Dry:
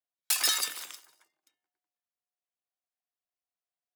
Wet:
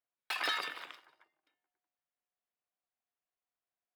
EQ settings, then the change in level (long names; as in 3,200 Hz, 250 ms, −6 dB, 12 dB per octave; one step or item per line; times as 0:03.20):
high-frequency loss of the air 430 metres
low-shelf EQ 220 Hz −3 dB
low-shelf EQ 440 Hz −4 dB
+5.0 dB